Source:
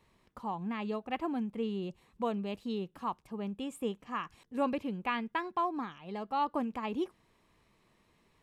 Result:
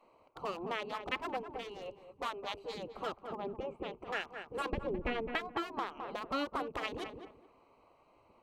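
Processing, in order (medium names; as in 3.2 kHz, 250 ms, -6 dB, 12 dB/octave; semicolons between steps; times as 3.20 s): local Wiener filter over 25 samples; spectral gate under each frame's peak -10 dB weak; 1.43–2.75 s: peaking EQ 200 Hz -12.5 dB 1.6 oct; 3.35–3.98 s: low-pass 2.5 kHz 12 dB/octave; 4.73–5.27 s: tilt EQ -4 dB/octave; filtered feedback delay 211 ms, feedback 23%, low-pass 1.5 kHz, level -9.5 dB; compression 2:1, threshold -51 dBFS, peak gain reduction 9 dB; trim +13.5 dB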